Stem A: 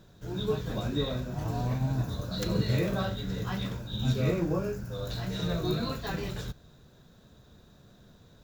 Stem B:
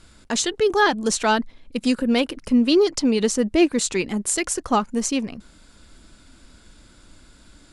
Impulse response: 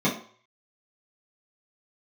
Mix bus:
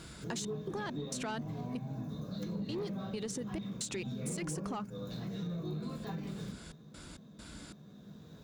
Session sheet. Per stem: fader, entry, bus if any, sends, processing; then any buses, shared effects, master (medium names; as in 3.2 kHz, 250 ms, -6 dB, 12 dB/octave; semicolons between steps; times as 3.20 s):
0.0 dB, 0.00 s, send -20 dB, auto duck -11 dB, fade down 0.30 s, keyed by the second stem
+2.0 dB, 0.00 s, no send, compression, threshold -22 dBFS, peak gain reduction 10.5 dB; peak limiter -19.5 dBFS, peak gain reduction 10.5 dB; trance gate "xx.x.xxx....x." 67 bpm -60 dB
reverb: on, RT60 0.50 s, pre-delay 3 ms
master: high-pass 57 Hz; saturation -18 dBFS, distortion -18 dB; compression 4:1, threshold -38 dBFS, peak gain reduction 13.5 dB